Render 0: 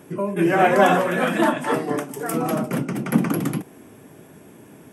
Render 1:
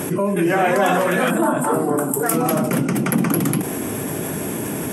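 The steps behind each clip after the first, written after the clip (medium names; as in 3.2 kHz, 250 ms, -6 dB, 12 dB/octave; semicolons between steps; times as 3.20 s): time-frequency box 1.31–2.24 s, 1.6–7.1 kHz -14 dB; peaking EQ 11 kHz +7 dB 1.4 oct; level flattener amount 70%; trim -3.5 dB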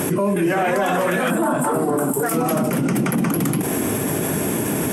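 waveshaping leveller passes 1; peak limiter -12 dBFS, peak gain reduction 10 dB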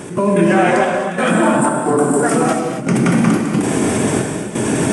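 trance gate ".xxxx..xxx" 89 bpm -12 dB; gated-style reverb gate 300 ms flat, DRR 1.5 dB; resampled via 22.05 kHz; trim +4 dB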